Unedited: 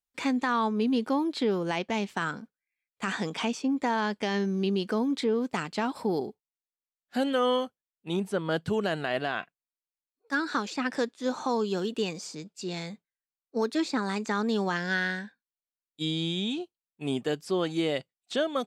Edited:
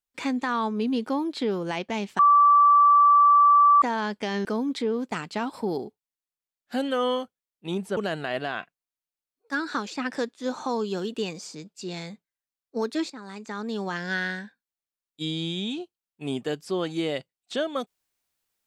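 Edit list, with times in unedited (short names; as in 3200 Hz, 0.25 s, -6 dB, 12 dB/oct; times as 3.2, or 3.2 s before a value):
2.19–3.82 bleep 1160 Hz -13 dBFS
4.45–4.87 cut
8.39–8.77 cut
13.9–14.96 fade in, from -15 dB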